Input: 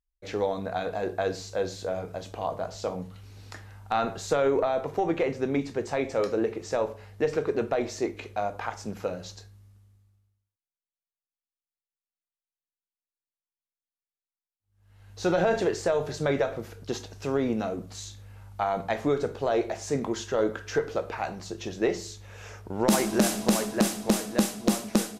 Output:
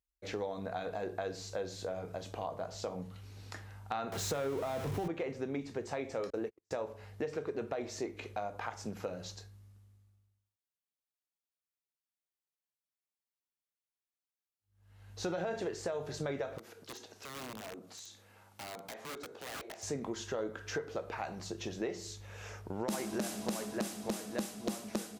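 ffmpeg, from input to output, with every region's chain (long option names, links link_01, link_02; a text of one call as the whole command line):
ffmpeg -i in.wav -filter_complex "[0:a]asettb=1/sr,asplit=3[link_01][link_02][link_03];[link_01]atrim=end=4.124[link_04];[link_02]atrim=start=4.12:end=5.08,asetpts=PTS-STARTPTS,afade=type=in:duration=0.004:curve=qsin,afade=type=out:start_time=0.956:duration=0.004:curve=qsin,aeval=exprs='val(0)+0.5*0.0355*sgn(val(0))':channel_layout=same,asubboost=boost=11.5:cutoff=240,bandreject=frequency=4600:width=30[link_05];[link_03]atrim=start=5.076[link_06];[link_04][link_05]acrossfade=duration=0.004:curve1=hsin:curve2=qsin[link_07];[link_07][link_06]acrossfade=duration=0.004:curve1=qsin:curve2=hsin,asettb=1/sr,asplit=3[link_08][link_09][link_10];[link_08]atrim=end=6.304[link_11];[link_09]atrim=start=6.3:end=6.71,asetpts=PTS-STARTPTS,afade=type=in:duration=0.004:curve=qsin,afade=type=out:start_time=0.406:duration=0.004:curve=qsin,agate=range=-47dB:threshold=-29dB:ratio=16:release=100:detection=peak,highshelf=frequency=9600:gain=8.5[link_12];[link_10]atrim=start=6.706[link_13];[link_11][link_12]acrossfade=duration=0.004:curve1=hsin:curve2=qsin[link_14];[link_14][link_13]acrossfade=duration=0.004:curve1=qsin:curve2=hsin,asettb=1/sr,asplit=3[link_15][link_16][link_17];[link_15]atrim=end=16.584[link_18];[link_16]atrim=start=16.58:end=19.83,asetpts=PTS-STARTPTS,afade=type=in:duration=0.004:curve=qsin,afade=type=out:start_time=3.246:duration=0.004:curve=qsin,highpass=260,acompressor=threshold=-47dB:ratio=2:attack=3.2:release=140:knee=1:detection=peak,aeval=exprs='(mod(59.6*val(0)+1,2)-1)/59.6':channel_layout=same[link_19];[link_17]atrim=start=19.826[link_20];[link_18][link_19]acrossfade=duration=0.004:curve1=hsin:curve2=qsin[link_21];[link_21][link_20]acrossfade=duration=0.004:curve1=qsin:curve2=hsin,highpass=44,acompressor=threshold=-33dB:ratio=3,volume=-3dB" out.wav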